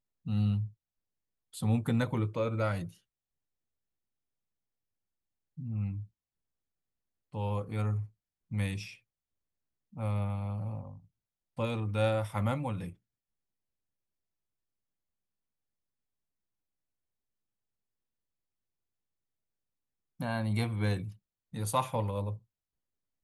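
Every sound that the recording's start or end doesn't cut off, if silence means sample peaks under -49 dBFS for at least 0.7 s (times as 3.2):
1.54–2.93
5.58–6.06
7.33–8.95
9.93–12.93
20.2–22.38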